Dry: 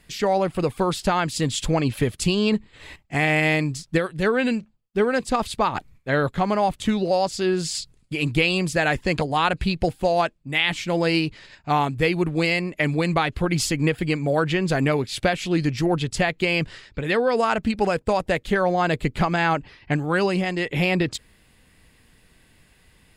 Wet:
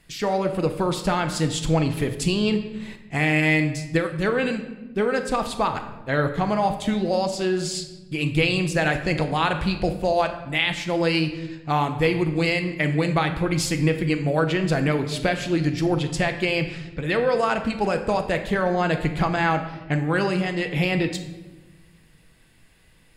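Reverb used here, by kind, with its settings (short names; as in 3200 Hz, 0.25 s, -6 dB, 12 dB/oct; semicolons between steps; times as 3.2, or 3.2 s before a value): shoebox room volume 580 m³, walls mixed, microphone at 0.69 m; gain -2 dB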